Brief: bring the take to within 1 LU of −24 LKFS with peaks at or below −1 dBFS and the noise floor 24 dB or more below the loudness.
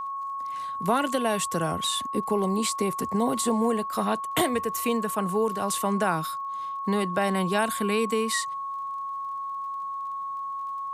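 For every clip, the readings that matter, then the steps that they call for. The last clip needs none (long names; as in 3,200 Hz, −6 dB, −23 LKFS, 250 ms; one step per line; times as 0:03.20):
crackle rate 29 per second; interfering tone 1,100 Hz; level of the tone −30 dBFS; integrated loudness −27.0 LKFS; sample peak −10.5 dBFS; target loudness −24.0 LKFS
→ click removal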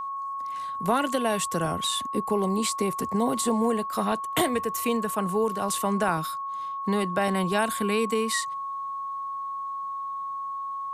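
crackle rate 0 per second; interfering tone 1,100 Hz; level of the tone −30 dBFS
→ notch filter 1,100 Hz, Q 30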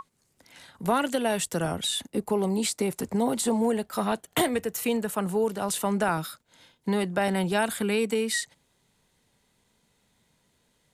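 interfering tone none found; integrated loudness −27.0 LKFS; sample peak −12.0 dBFS; target loudness −24.0 LKFS
→ level +3 dB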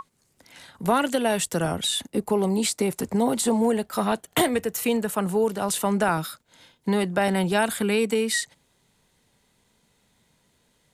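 integrated loudness −24.0 LKFS; sample peak −9.0 dBFS; background noise floor −67 dBFS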